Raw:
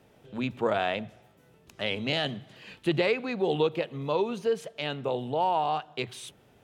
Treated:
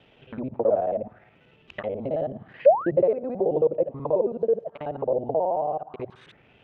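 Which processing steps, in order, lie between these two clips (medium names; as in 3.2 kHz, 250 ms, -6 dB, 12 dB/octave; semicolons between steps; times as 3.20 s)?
time reversed locally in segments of 54 ms; in parallel at -2 dB: compression, threshold -37 dBFS, peak gain reduction 15.5 dB; on the sum: painted sound rise, 2.65–2.91 s, 500–2000 Hz -18 dBFS; touch-sensitive low-pass 580–3200 Hz down, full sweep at -25 dBFS; trim -4 dB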